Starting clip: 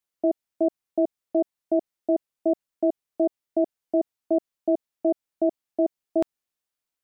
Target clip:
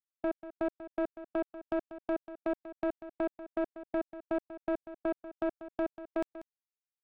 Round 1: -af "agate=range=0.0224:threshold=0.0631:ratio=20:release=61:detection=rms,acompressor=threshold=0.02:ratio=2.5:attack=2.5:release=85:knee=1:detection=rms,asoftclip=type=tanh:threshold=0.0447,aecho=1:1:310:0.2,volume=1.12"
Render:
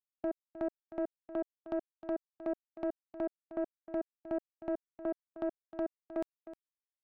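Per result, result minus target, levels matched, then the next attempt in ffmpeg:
echo 120 ms late; compression: peak gain reduction +5.5 dB
-af "agate=range=0.0224:threshold=0.0631:ratio=20:release=61:detection=rms,acompressor=threshold=0.02:ratio=2.5:attack=2.5:release=85:knee=1:detection=rms,asoftclip=type=tanh:threshold=0.0447,aecho=1:1:190:0.2,volume=1.12"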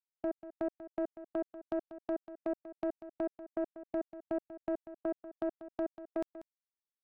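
compression: peak gain reduction +5.5 dB
-af "agate=range=0.0224:threshold=0.0631:ratio=20:release=61:detection=rms,acompressor=threshold=0.0562:ratio=2.5:attack=2.5:release=85:knee=1:detection=rms,asoftclip=type=tanh:threshold=0.0447,aecho=1:1:190:0.2,volume=1.12"

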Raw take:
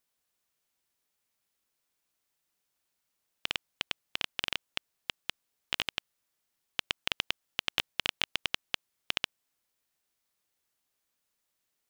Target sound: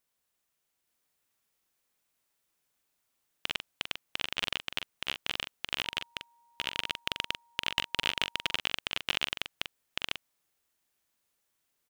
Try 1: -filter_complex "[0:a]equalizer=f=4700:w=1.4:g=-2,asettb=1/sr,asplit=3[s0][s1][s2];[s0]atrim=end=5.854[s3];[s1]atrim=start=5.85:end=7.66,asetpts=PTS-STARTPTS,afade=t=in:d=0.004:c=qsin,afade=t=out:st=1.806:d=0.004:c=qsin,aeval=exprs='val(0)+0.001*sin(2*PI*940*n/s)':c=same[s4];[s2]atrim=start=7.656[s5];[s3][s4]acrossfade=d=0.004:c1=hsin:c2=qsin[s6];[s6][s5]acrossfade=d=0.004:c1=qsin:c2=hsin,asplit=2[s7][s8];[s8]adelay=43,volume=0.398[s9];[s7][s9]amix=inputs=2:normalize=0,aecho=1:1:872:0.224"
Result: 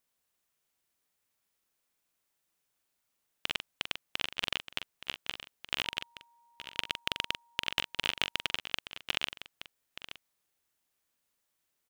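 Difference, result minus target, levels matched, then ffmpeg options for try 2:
echo-to-direct -11 dB
-filter_complex "[0:a]equalizer=f=4700:w=1.4:g=-2,asettb=1/sr,asplit=3[s0][s1][s2];[s0]atrim=end=5.854[s3];[s1]atrim=start=5.85:end=7.66,asetpts=PTS-STARTPTS,afade=t=in:d=0.004:c=qsin,afade=t=out:st=1.806:d=0.004:c=qsin,aeval=exprs='val(0)+0.001*sin(2*PI*940*n/s)':c=same[s4];[s2]atrim=start=7.656[s5];[s3][s4]acrossfade=d=0.004:c1=hsin:c2=qsin[s6];[s6][s5]acrossfade=d=0.004:c1=qsin:c2=hsin,asplit=2[s7][s8];[s8]adelay=43,volume=0.398[s9];[s7][s9]amix=inputs=2:normalize=0,aecho=1:1:872:0.794"

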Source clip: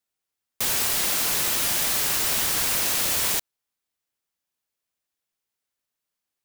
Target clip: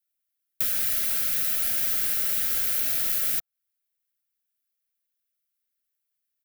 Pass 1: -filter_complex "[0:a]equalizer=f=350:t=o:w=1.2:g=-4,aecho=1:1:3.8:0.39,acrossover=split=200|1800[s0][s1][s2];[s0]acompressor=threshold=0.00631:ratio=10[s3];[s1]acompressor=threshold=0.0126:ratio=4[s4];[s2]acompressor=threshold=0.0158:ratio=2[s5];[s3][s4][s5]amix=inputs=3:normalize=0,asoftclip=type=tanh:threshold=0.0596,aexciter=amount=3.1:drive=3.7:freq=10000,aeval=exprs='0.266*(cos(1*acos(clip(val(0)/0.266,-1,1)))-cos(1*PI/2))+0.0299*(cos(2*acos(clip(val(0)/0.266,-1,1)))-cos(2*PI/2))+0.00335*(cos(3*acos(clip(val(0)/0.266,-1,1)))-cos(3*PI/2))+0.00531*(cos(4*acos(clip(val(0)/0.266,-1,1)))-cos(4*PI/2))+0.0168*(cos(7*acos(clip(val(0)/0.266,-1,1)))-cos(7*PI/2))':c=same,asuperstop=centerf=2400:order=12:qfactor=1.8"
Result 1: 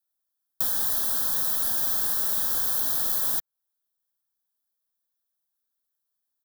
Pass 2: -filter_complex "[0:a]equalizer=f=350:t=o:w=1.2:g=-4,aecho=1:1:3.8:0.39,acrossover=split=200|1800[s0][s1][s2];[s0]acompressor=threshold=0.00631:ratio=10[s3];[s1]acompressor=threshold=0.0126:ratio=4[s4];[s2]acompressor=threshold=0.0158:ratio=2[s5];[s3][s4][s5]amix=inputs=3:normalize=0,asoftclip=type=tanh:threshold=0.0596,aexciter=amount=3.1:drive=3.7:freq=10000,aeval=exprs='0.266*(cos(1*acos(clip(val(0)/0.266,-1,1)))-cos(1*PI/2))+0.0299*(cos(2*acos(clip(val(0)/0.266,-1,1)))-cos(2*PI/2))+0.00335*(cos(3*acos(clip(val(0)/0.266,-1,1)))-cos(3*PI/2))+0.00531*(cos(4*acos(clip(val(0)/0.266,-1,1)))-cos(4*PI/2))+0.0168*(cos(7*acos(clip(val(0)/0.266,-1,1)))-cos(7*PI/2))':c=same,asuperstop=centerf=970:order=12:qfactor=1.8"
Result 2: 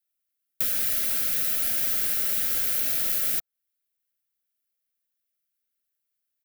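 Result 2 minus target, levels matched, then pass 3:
250 Hz band +2.5 dB
-filter_complex "[0:a]equalizer=f=350:t=o:w=1.2:g=-11,aecho=1:1:3.8:0.39,acrossover=split=200|1800[s0][s1][s2];[s0]acompressor=threshold=0.00631:ratio=10[s3];[s1]acompressor=threshold=0.0126:ratio=4[s4];[s2]acompressor=threshold=0.0158:ratio=2[s5];[s3][s4][s5]amix=inputs=3:normalize=0,asoftclip=type=tanh:threshold=0.0596,aexciter=amount=3.1:drive=3.7:freq=10000,aeval=exprs='0.266*(cos(1*acos(clip(val(0)/0.266,-1,1)))-cos(1*PI/2))+0.0299*(cos(2*acos(clip(val(0)/0.266,-1,1)))-cos(2*PI/2))+0.00335*(cos(3*acos(clip(val(0)/0.266,-1,1)))-cos(3*PI/2))+0.00531*(cos(4*acos(clip(val(0)/0.266,-1,1)))-cos(4*PI/2))+0.0168*(cos(7*acos(clip(val(0)/0.266,-1,1)))-cos(7*PI/2))':c=same,asuperstop=centerf=970:order=12:qfactor=1.8"

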